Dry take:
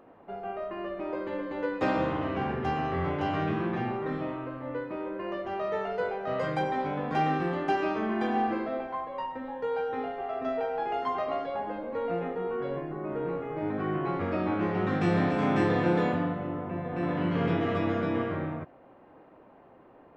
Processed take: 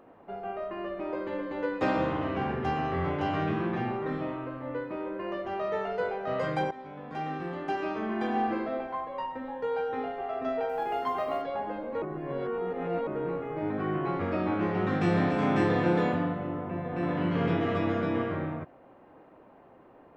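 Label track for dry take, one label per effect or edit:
6.710000	8.600000	fade in, from -15.5 dB
10.690000	11.420000	companded quantiser 8-bit
12.020000	13.070000	reverse

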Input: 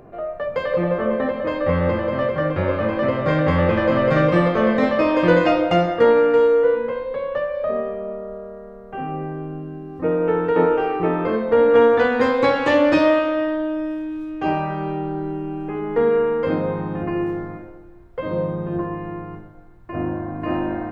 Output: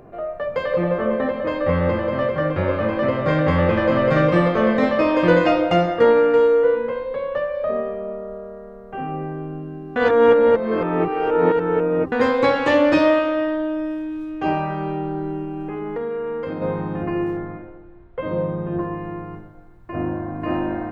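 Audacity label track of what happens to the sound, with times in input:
9.960000	12.120000	reverse
15.430000	16.620000	compression 5:1, threshold -24 dBFS
17.370000	18.790000	low-pass 3.7 kHz 24 dB/octave

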